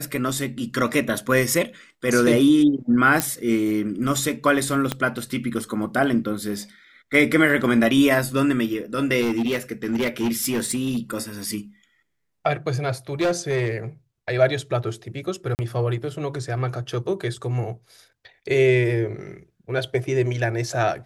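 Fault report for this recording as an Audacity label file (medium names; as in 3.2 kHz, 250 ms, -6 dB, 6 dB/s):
3.200000	3.200000	pop -3 dBFS
4.920000	4.920000	pop -8 dBFS
9.200000	11.230000	clipped -18.5 dBFS
13.210000	13.780000	clipped -17 dBFS
15.550000	15.590000	dropout 39 ms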